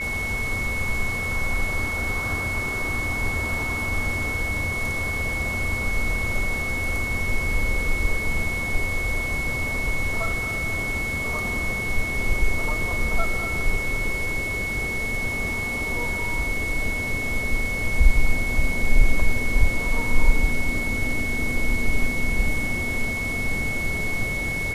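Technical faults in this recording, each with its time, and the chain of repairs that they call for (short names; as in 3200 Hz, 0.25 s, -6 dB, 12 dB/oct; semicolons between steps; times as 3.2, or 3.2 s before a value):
tone 2200 Hz -26 dBFS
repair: notch 2200 Hz, Q 30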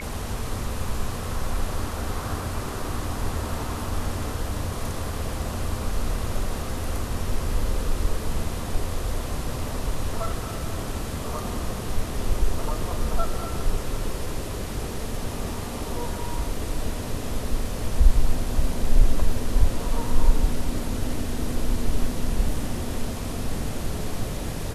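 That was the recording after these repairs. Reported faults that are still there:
none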